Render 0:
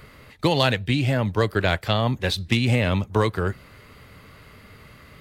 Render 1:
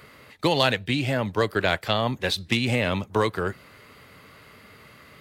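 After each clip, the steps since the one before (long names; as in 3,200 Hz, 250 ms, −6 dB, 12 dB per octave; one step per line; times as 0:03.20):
high-pass filter 220 Hz 6 dB per octave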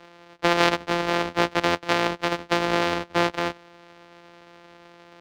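samples sorted by size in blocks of 256 samples
three-way crossover with the lows and the highs turned down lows −16 dB, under 280 Hz, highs −22 dB, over 5,100 Hz
level +4 dB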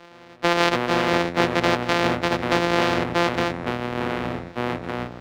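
in parallel at −2 dB: brickwall limiter −9 dBFS, peak gain reduction 7.5 dB
on the sum: delay with pitch and tempo change per echo 110 ms, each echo −6 semitones, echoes 3, each echo −6 dB
level −3 dB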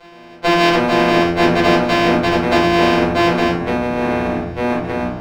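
rectangular room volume 230 cubic metres, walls furnished, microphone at 5 metres
level −3 dB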